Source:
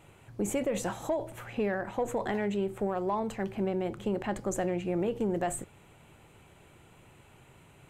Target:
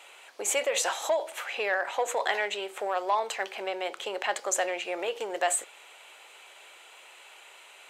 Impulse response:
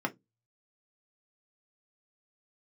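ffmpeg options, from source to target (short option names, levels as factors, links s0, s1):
-af "highpass=f=510:w=0.5412,highpass=f=510:w=1.3066,equalizer=f=4000:t=o:w=2.4:g=11,volume=1.58"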